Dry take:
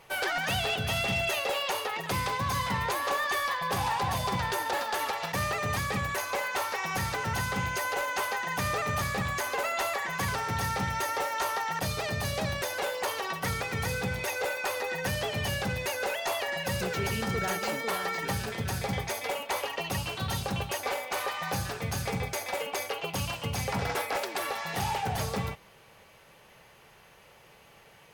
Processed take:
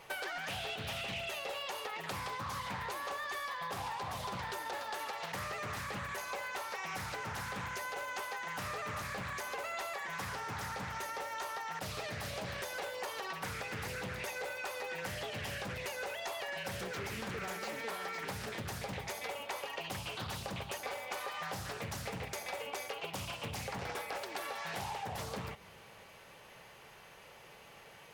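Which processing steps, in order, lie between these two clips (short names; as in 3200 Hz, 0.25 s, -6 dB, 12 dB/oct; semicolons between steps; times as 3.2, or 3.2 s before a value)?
low shelf 210 Hz -4.5 dB; compressor 12:1, threshold -38 dBFS, peak gain reduction 12 dB; on a send at -20 dB: reverb RT60 2.6 s, pre-delay 5 ms; on the sum: Doppler distortion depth 0.58 ms; gain +1 dB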